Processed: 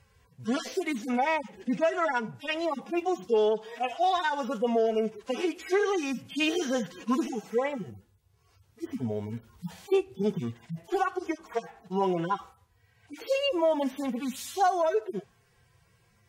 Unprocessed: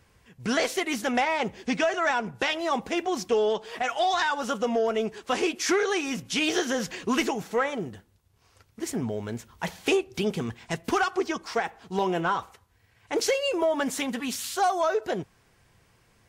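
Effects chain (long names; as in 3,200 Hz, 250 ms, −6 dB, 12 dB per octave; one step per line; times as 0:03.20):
harmonic-percussive split with one part muted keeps harmonic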